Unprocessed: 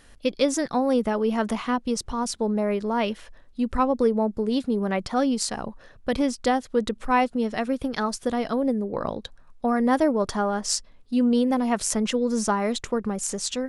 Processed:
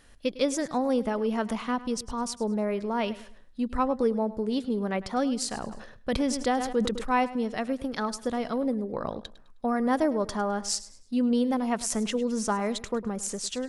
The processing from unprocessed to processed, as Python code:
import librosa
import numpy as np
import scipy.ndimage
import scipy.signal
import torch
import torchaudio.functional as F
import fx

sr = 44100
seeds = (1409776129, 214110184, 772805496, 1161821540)

y = fx.echo_feedback(x, sr, ms=104, feedback_pct=33, wet_db=-17.0)
y = fx.sustainer(y, sr, db_per_s=53.0, at=(5.51, 7.2))
y = F.gain(torch.from_numpy(y), -4.0).numpy()